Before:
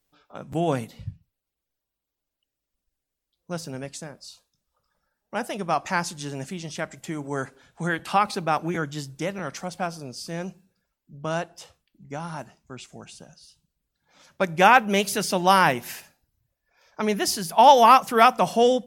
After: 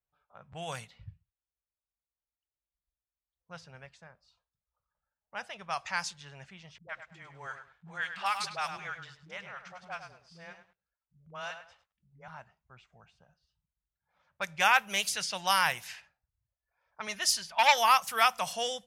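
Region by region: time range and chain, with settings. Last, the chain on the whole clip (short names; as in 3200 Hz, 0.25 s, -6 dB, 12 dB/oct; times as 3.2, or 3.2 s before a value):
6.78–12.28 low shelf 450 Hz -5 dB + dispersion highs, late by 0.106 s, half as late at 300 Hz + lo-fi delay 0.102 s, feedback 35%, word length 8-bit, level -8 dB
17.07–17.78 comb 3.3 ms, depth 49% + core saturation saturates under 1400 Hz
whole clip: low-pass opened by the level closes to 980 Hz, open at -18 dBFS; HPF 47 Hz; passive tone stack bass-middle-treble 10-0-10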